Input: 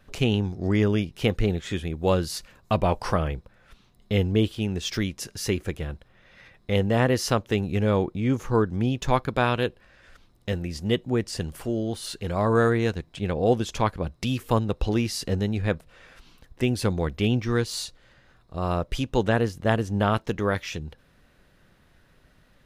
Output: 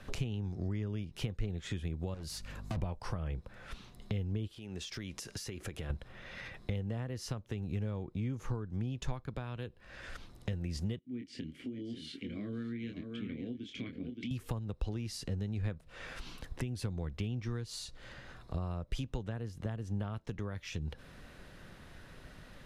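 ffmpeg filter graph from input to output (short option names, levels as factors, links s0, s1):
-filter_complex "[0:a]asettb=1/sr,asplit=3[s0][s1][s2];[s0]atrim=end=2.144[s3];[s1]atrim=start=2.14:end=2.82,asetpts=PTS-STARTPTS,afade=t=in:d=0.004:c=qsin,afade=t=out:st=0.676:d=0.004:c=qsin,aeval=exprs='val(0)+0.00316*(sin(2*PI*50*n/s)+sin(2*PI*2*50*n/s)/2+sin(2*PI*3*50*n/s)/3+sin(2*PI*4*50*n/s)/4+sin(2*PI*5*50*n/s)/5)':c=same,volume=29.9,asoftclip=hard,volume=0.0335[s4];[s2]atrim=start=2.816[s5];[s3][s4]acrossfade=d=0.004:c1=hsin:c2=qsin[s6];[s6][s5]acrossfade=d=0.004:c1=qsin:c2=hsin,asettb=1/sr,asplit=3[s7][s8][s9];[s7]atrim=end=4.474[s10];[s8]atrim=start=4.47:end=5.9,asetpts=PTS-STARTPTS,afade=t=in:d=0.004:c=qsin,afade=t=out:st=1.426:d=0.004:c=qsin,lowshelf=f=200:g=-8,acompressor=threshold=0.01:ratio=8:attack=3.2:release=140:knee=1:detection=peak[s11];[s9]atrim=start=5.896[s12];[s10][s11]acrossfade=d=0.004:c1=hsin:c2=qsin[s13];[s13][s12]acrossfade=d=0.004:c1=qsin:c2=hsin,asettb=1/sr,asplit=3[s14][s15][s16];[s14]atrim=end=10.994[s17];[s15]atrim=start=10.99:end=14.31,asetpts=PTS-STARTPTS,afade=t=in:d=0.004:c=qsin,afade=t=out:st=3.316:d=0.004:c=qsin,asplit=3[s18][s19][s20];[s18]bandpass=f=270:t=q:w=8,volume=1[s21];[s19]bandpass=f=2290:t=q:w=8,volume=0.501[s22];[s20]bandpass=f=3010:t=q:w=8,volume=0.355[s23];[s21][s22][s23]amix=inputs=3:normalize=0,asplit=2[s24][s25];[s25]adelay=25,volume=0.501[s26];[s24][s26]amix=inputs=2:normalize=0,atrim=end_sample=146412,aecho=1:1:573:0.316,atrim=end_sample=146412[s27];[s16]atrim=start=14.306[s28];[s17][s27]acrossfade=d=0.004:c1=hsin:c2=qsin[s29];[s29][s28]acrossfade=d=0.004:c1=qsin:c2=hsin,acompressor=threshold=0.0126:ratio=5,lowpass=12000,acrossover=split=170[s30][s31];[s31]acompressor=threshold=0.00355:ratio=4[s32];[s30][s32]amix=inputs=2:normalize=0,volume=2.11"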